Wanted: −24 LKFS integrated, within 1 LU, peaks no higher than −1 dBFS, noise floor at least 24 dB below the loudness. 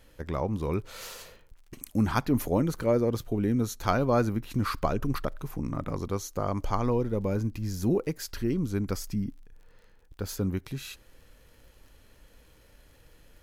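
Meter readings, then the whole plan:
crackle rate 45 per second; integrated loudness −29.5 LKFS; sample peak −9.5 dBFS; target loudness −24.0 LKFS
→ click removal
level +5.5 dB

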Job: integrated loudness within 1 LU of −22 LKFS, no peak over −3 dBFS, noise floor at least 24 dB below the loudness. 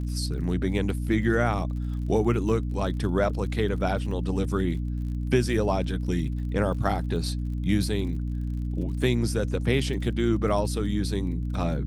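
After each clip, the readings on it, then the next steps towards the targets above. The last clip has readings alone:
crackle rate 39 per second; mains hum 60 Hz; hum harmonics up to 300 Hz; level of the hum −26 dBFS; integrated loudness −27.0 LKFS; sample peak −9.5 dBFS; target loudness −22.0 LKFS
→ click removal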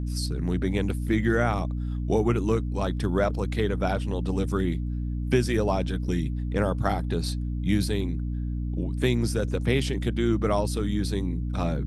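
crackle rate 0.084 per second; mains hum 60 Hz; hum harmonics up to 300 Hz; level of the hum −27 dBFS
→ hum removal 60 Hz, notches 5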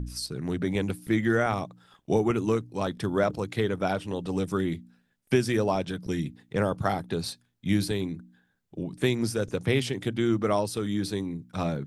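mains hum none found; integrated loudness −28.5 LKFS; sample peak −10.0 dBFS; target loudness −22.0 LKFS
→ level +6.5 dB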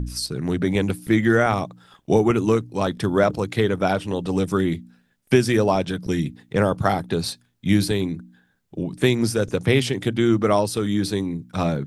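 integrated loudness −22.0 LKFS; sample peak −3.5 dBFS; background noise floor −65 dBFS

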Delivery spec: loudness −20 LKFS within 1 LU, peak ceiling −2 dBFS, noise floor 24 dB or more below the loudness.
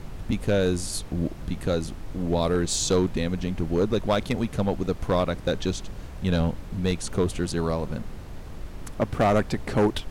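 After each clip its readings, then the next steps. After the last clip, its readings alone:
share of clipped samples 1.2%; peaks flattened at −15.0 dBFS; background noise floor −39 dBFS; target noise floor −51 dBFS; integrated loudness −26.5 LKFS; sample peak −15.0 dBFS; target loudness −20.0 LKFS
→ clipped peaks rebuilt −15 dBFS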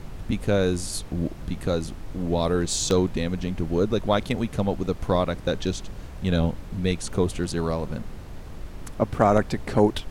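share of clipped samples 0.0%; background noise floor −39 dBFS; target noise floor −50 dBFS
→ noise reduction from a noise print 11 dB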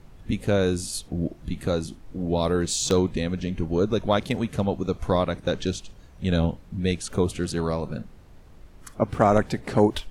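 background noise floor −49 dBFS; target noise floor −50 dBFS
→ noise reduction from a noise print 6 dB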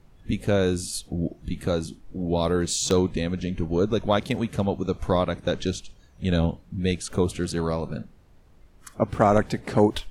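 background noise floor −54 dBFS; integrated loudness −25.5 LKFS; sample peak −6.0 dBFS; target loudness −20.0 LKFS
→ level +5.5 dB
brickwall limiter −2 dBFS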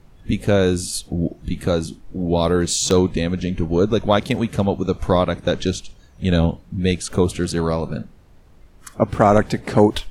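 integrated loudness −20.0 LKFS; sample peak −2.0 dBFS; background noise floor −48 dBFS

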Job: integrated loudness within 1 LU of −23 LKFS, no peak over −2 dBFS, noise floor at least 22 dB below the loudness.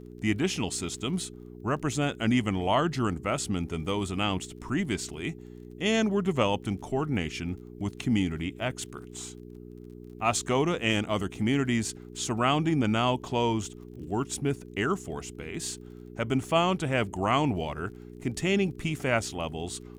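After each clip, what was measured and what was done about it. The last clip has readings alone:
crackle rate 33 per second; mains hum 60 Hz; hum harmonics up to 420 Hz; level of the hum −43 dBFS; integrated loudness −29.0 LKFS; sample peak −10.5 dBFS; target loudness −23.0 LKFS
→ click removal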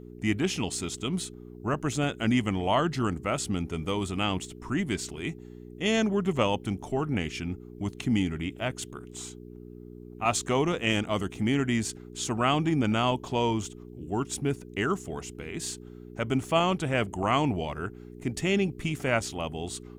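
crackle rate 0.10 per second; mains hum 60 Hz; hum harmonics up to 420 Hz; level of the hum −43 dBFS
→ hum removal 60 Hz, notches 7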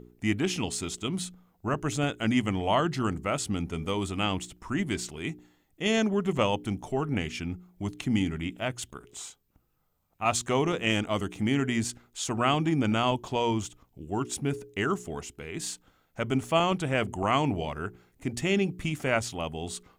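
mains hum none found; integrated loudness −29.5 LKFS; sample peak −11.0 dBFS; target loudness −23.0 LKFS
→ level +6.5 dB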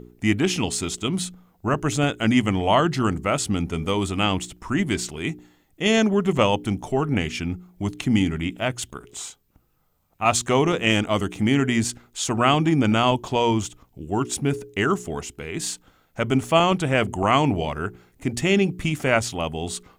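integrated loudness −23.0 LKFS; sample peak −4.5 dBFS; background noise floor −63 dBFS

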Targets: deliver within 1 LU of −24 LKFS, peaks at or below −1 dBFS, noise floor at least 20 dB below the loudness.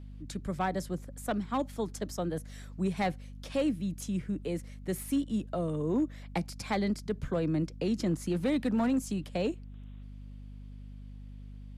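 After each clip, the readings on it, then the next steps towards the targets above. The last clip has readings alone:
share of clipped samples 0.6%; peaks flattened at −22.5 dBFS; mains hum 50 Hz; hum harmonics up to 250 Hz; level of the hum −43 dBFS; integrated loudness −33.0 LKFS; sample peak −22.5 dBFS; target loudness −24.0 LKFS
→ clipped peaks rebuilt −22.5 dBFS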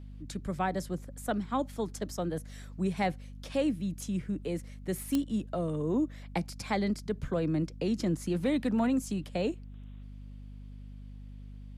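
share of clipped samples 0.0%; mains hum 50 Hz; hum harmonics up to 250 Hz; level of the hum −43 dBFS
→ mains-hum notches 50/100/150/200/250 Hz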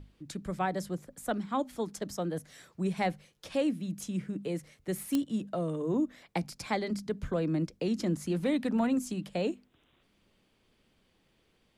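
mains hum none found; integrated loudness −33.5 LKFS; sample peak −13.5 dBFS; target loudness −24.0 LKFS
→ level +9.5 dB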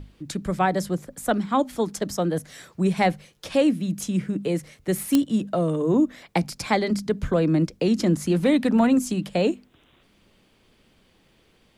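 integrated loudness −24.0 LKFS; sample peak −4.0 dBFS; background noise floor −61 dBFS

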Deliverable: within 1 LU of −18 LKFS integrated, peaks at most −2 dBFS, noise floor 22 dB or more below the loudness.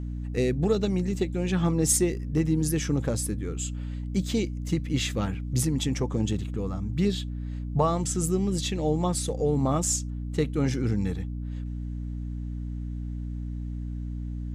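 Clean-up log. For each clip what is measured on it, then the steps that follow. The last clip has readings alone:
mains hum 60 Hz; hum harmonics up to 300 Hz; level of the hum −30 dBFS; integrated loudness −28.0 LKFS; sample peak −10.0 dBFS; target loudness −18.0 LKFS
→ mains-hum notches 60/120/180/240/300 Hz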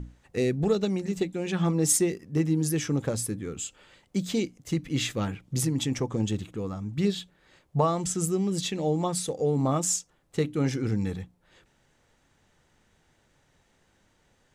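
mains hum none found; integrated loudness −28.0 LKFS; sample peak −10.5 dBFS; target loudness −18.0 LKFS
→ level +10 dB
brickwall limiter −2 dBFS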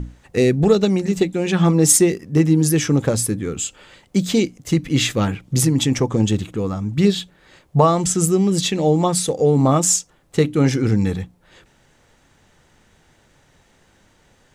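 integrated loudness −18.0 LKFS; sample peak −2.0 dBFS; background noise floor −57 dBFS

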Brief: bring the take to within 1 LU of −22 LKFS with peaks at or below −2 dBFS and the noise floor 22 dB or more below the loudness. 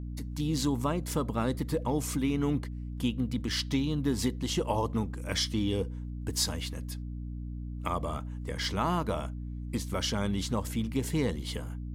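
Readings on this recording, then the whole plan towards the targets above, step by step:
mains hum 60 Hz; hum harmonics up to 300 Hz; level of the hum −35 dBFS; integrated loudness −32.0 LKFS; sample peak −15.0 dBFS; target loudness −22.0 LKFS
→ mains-hum notches 60/120/180/240/300 Hz
level +10 dB

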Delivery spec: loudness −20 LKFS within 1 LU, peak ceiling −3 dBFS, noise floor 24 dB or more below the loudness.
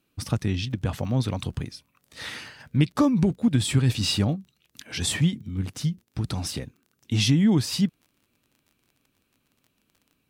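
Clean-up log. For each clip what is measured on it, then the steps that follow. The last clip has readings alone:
crackle rate 27 per second; integrated loudness −25.5 LKFS; sample peak −9.0 dBFS; target loudness −20.0 LKFS
→ click removal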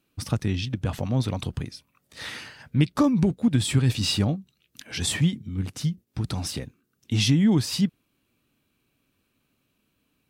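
crackle rate 0 per second; integrated loudness −25.0 LKFS; sample peak −9.0 dBFS; target loudness −20.0 LKFS
→ level +5 dB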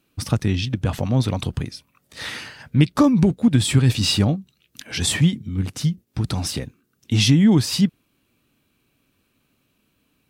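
integrated loudness −20.5 LKFS; sample peak −4.0 dBFS; background noise floor −69 dBFS

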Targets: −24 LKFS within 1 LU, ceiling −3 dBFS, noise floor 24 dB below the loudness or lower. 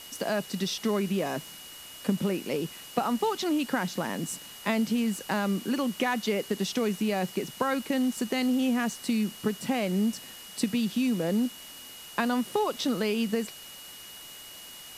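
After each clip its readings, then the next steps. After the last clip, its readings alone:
interfering tone 2,900 Hz; level of the tone −47 dBFS; background noise floor −46 dBFS; target noise floor −53 dBFS; integrated loudness −29.0 LKFS; sample peak −11.5 dBFS; target loudness −24.0 LKFS
→ notch filter 2,900 Hz, Q 30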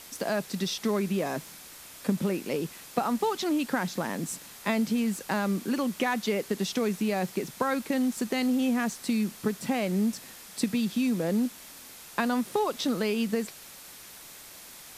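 interfering tone none found; background noise floor −47 dBFS; target noise floor −53 dBFS
→ noise reduction from a noise print 6 dB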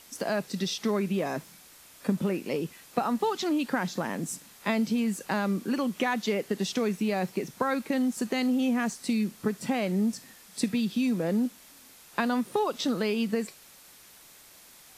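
background noise floor −53 dBFS; integrated loudness −29.0 LKFS; sample peak −11.5 dBFS; target loudness −24.0 LKFS
→ level +5 dB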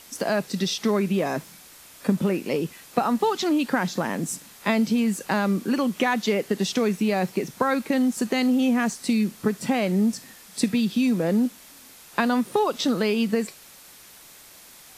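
integrated loudness −24.0 LKFS; sample peak −6.5 dBFS; background noise floor −48 dBFS

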